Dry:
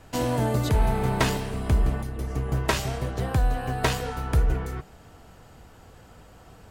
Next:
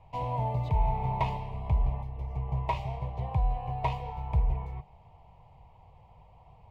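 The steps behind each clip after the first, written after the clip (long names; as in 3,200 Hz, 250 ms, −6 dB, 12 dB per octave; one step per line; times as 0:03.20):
drawn EQ curve 150 Hz 0 dB, 270 Hz −19 dB, 970 Hz +6 dB, 1,500 Hz −30 dB, 2,200 Hz −3 dB, 7,700 Hz −28 dB
level −4.5 dB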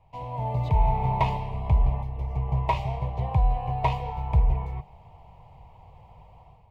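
automatic gain control gain up to 10 dB
level −4.5 dB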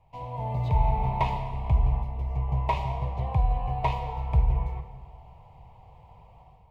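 convolution reverb RT60 1.7 s, pre-delay 13 ms, DRR 7.5 dB
level −2 dB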